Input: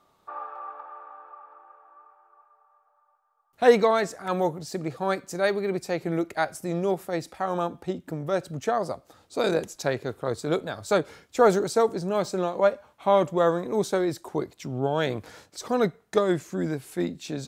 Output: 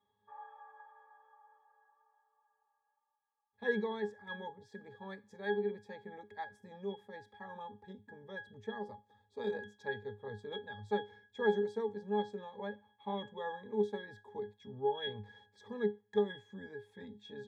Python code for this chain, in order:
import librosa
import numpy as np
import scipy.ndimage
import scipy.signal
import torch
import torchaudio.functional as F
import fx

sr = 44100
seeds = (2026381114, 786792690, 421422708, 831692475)

y = fx.tilt_shelf(x, sr, db=-6.0, hz=870.0)
y = fx.octave_resonator(y, sr, note='G#', decay_s=0.21)
y = y * 10.0 ** (3.0 / 20.0)